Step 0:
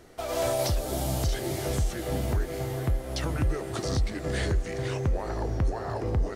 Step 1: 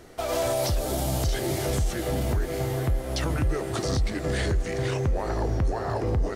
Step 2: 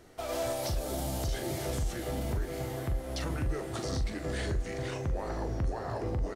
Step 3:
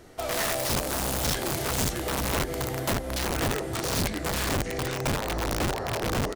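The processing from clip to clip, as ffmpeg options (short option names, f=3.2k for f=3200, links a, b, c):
-af "alimiter=limit=-22dB:level=0:latency=1:release=12,volume=4dB"
-filter_complex "[0:a]asplit=2[a][b];[b]adelay=42,volume=-8.5dB[c];[a][c]amix=inputs=2:normalize=0,volume=-7.5dB"
-af "aeval=exprs='(mod(23.7*val(0)+1,2)-1)/23.7':c=same,volume=5.5dB"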